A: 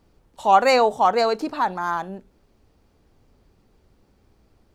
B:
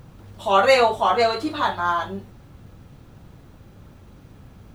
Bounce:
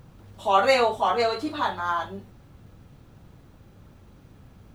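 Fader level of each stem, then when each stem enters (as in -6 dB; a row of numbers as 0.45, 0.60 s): -11.5, -4.5 dB; 0.00, 0.00 s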